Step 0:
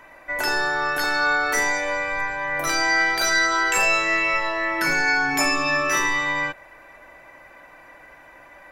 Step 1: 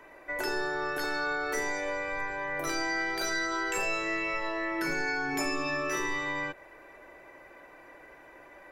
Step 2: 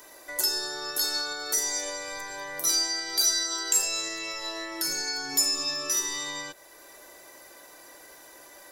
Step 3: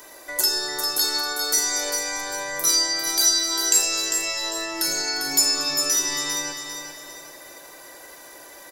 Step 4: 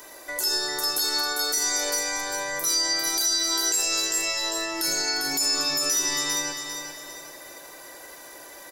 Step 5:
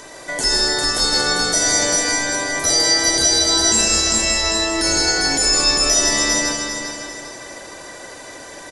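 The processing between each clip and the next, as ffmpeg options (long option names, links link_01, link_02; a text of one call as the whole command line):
ffmpeg -i in.wav -filter_complex "[0:a]equalizer=frequency=390:width=2:gain=11.5,acrossover=split=190[link_01][link_02];[link_02]acompressor=threshold=-26dB:ratio=2[link_03];[link_01][link_03]amix=inputs=2:normalize=0,volume=-6.5dB" out.wav
ffmpeg -i in.wav -af "lowshelf=frequency=150:gain=-6.5,alimiter=level_in=4dB:limit=-24dB:level=0:latency=1:release=493,volume=-4dB,aexciter=amount=8.8:drive=7.1:freq=3600" out.wav
ffmpeg -i in.wav -af "aecho=1:1:399|798|1197|1596:0.447|0.17|0.0645|0.0245,volume=5dB" out.wav
ffmpeg -i in.wav -af "alimiter=limit=-15dB:level=0:latency=1:release=44" out.wav
ffmpeg -i in.wav -filter_complex "[0:a]asplit=2[link_01][link_02];[link_02]acrusher=samples=34:mix=1:aa=0.000001,volume=-11dB[link_03];[link_01][link_03]amix=inputs=2:normalize=0,aecho=1:1:160:0.562,aresample=22050,aresample=44100,volume=7dB" out.wav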